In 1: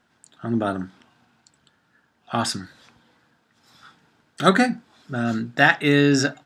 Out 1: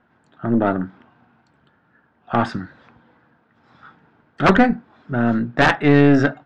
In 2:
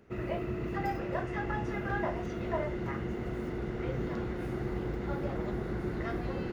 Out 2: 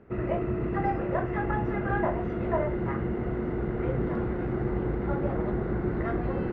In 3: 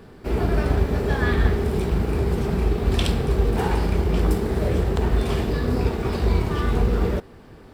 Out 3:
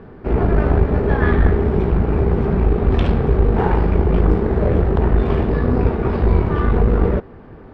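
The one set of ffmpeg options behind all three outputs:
-af "aeval=exprs='(mod(1.88*val(0)+1,2)-1)/1.88':c=same,lowpass=1700,aeval=exprs='(tanh(4.47*val(0)+0.5)-tanh(0.5))/4.47':c=same,volume=2.51"

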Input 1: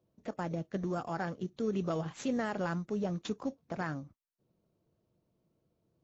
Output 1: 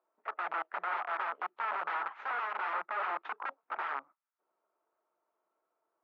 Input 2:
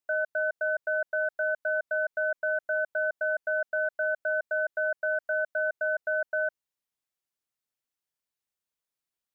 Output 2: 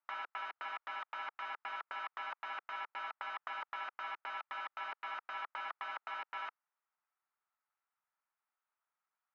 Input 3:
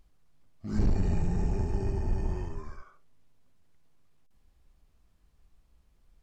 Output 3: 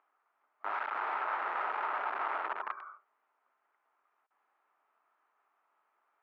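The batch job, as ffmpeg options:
-af "aeval=exprs='(mod(44.7*val(0)+1,2)-1)/44.7':c=same,highpass=f=490:w=0.5412,highpass=f=490:w=1.3066,equalizer=f=510:t=q:w=4:g=-9,equalizer=f=900:t=q:w=4:g=6,equalizer=f=1300:t=q:w=4:g=10,lowpass=f=2200:w=0.5412,lowpass=f=2200:w=1.3066,volume=1.33"

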